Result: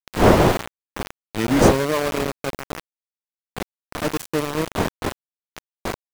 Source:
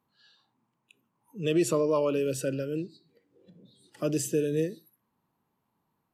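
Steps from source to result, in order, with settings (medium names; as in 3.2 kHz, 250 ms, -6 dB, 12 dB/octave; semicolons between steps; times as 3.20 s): tape start-up on the opening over 1.95 s; wind noise 580 Hz -28 dBFS; small samples zeroed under -24 dBFS; trim +5 dB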